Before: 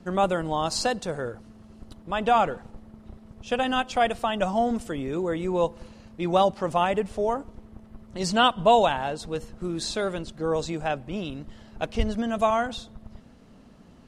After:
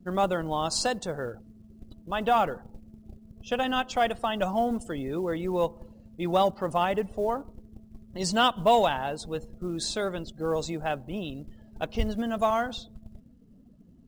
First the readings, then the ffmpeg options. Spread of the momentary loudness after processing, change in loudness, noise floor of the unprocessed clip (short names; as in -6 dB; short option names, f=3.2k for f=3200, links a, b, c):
13 LU, -2.5 dB, -51 dBFS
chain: -af "bandreject=f=2.4k:w=20,afftdn=nr=20:nf=-47,highshelf=f=6.7k:g=6,acontrast=32,acrusher=bits=8:mode=log:mix=0:aa=0.000001,volume=-7.5dB"